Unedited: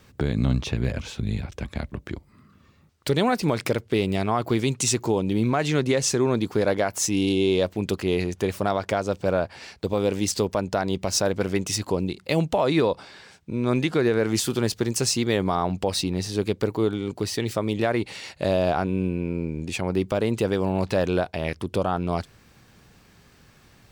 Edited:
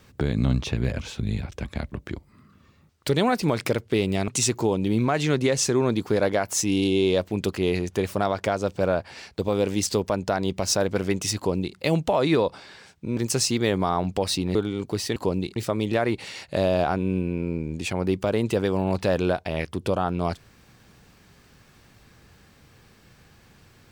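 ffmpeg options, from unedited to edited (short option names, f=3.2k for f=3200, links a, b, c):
-filter_complex "[0:a]asplit=6[a][b][c][d][e][f];[a]atrim=end=4.282[g];[b]atrim=start=4.728:end=13.622[h];[c]atrim=start=14.828:end=16.212[i];[d]atrim=start=16.828:end=17.442[j];[e]atrim=start=11.818:end=12.222[k];[f]atrim=start=17.438[l];[g][h]acrossfade=d=0.004:c1=hsin:c2=hsin[m];[m][i]acrossfade=d=0.004:c1=hsin:c2=hsin[n];[n][j]acrossfade=d=0.004:c1=hsin:c2=hsin[o];[o][k]acrossfade=d=0.004:c1=hsin:c2=hsin[p];[p][l]acrossfade=d=0.004:c1=hsin:c2=hsin"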